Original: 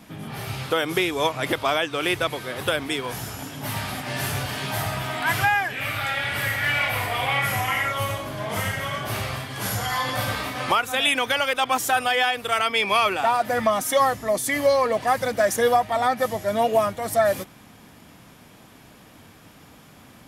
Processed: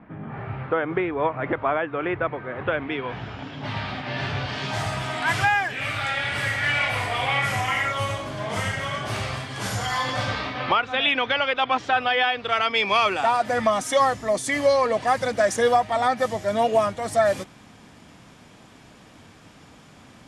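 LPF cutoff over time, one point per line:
LPF 24 dB/oct
2.48 s 1900 Hz
3.6 s 4200 Hz
4.38 s 4200 Hz
4.88 s 8700 Hz
10.02 s 8700 Hz
10.65 s 4000 Hz
12.27 s 4000 Hz
13.22 s 8800 Hz

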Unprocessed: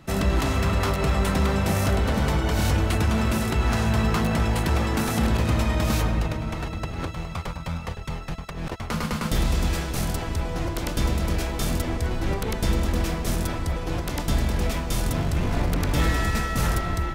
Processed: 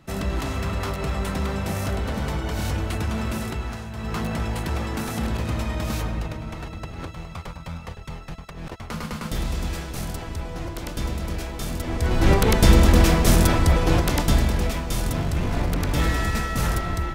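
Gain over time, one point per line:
3.47 s -4 dB
3.91 s -13.5 dB
4.17 s -4 dB
11.77 s -4 dB
12.27 s +9 dB
13.91 s +9 dB
14.73 s 0 dB

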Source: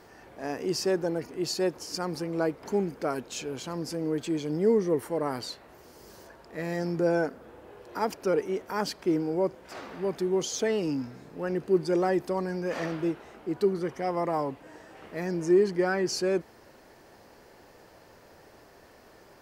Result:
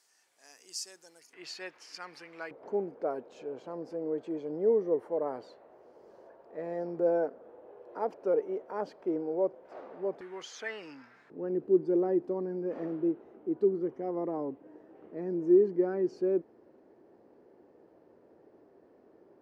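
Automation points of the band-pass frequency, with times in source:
band-pass, Q 1.7
7800 Hz
from 1.33 s 2200 Hz
from 2.51 s 550 Hz
from 10.21 s 1700 Hz
from 11.3 s 340 Hz

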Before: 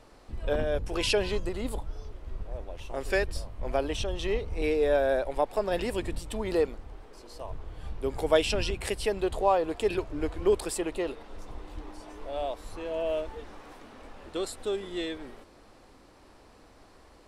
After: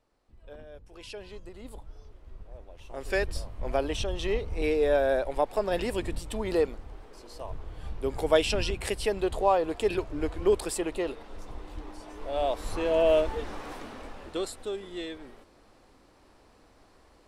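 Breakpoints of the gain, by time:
0.92 s -18.5 dB
1.92 s -8.5 dB
2.74 s -8.5 dB
3.25 s +0.5 dB
12.11 s +0.5 dB
12.71 s +8 dB
13.8 s +8 dB
14.71 s -3.5 dB

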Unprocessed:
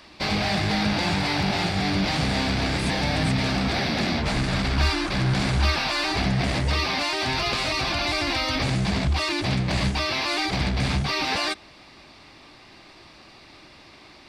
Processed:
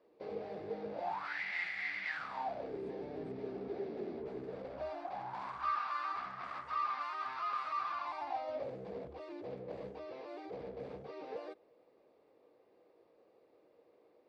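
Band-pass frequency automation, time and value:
band-pass, Q 10
0.91 s 460 Hz
1.4 s 2000 Hz
2.06 s 2000 Hz
2.74 s 410 Hz
4.4 s 410 Hz
5.67 s 1200 Hz
7.94 s 1200 Hz
8.75 s 480 Hz

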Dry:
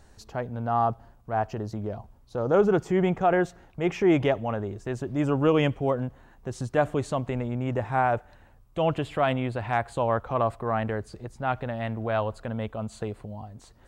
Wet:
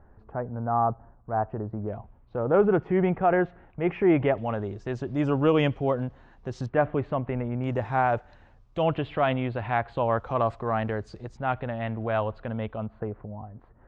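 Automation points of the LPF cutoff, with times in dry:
LPF 24 dB/oct
1500 Hz
from 1.88 s 2500 Hz
from 4.38 s 5400 Hz
from 6.66 s 2500 Hz
from 7.64 s 5900 Hz
from 8.83 s 3700 Hz
from 10.18 s 6200 Hz
from 11.37 s 3400 Hz
from 12.86 s 1700 Hz

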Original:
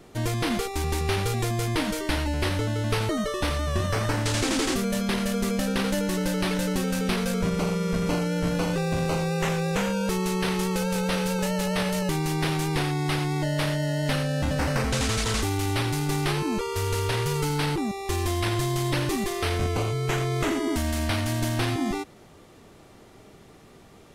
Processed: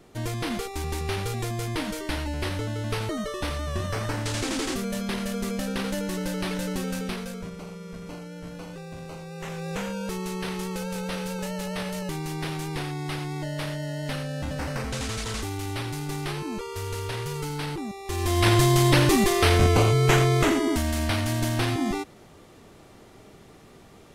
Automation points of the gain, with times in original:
6.94 s -3.5 dB
7.59 s -13.5 dB
9.26 s -13.5 dB
9.73 s -5.5 dB
18.04 s -5.5 dB
18.48 s +7 dB
20.16 s +7 dB
20.85 s +0.5 dB

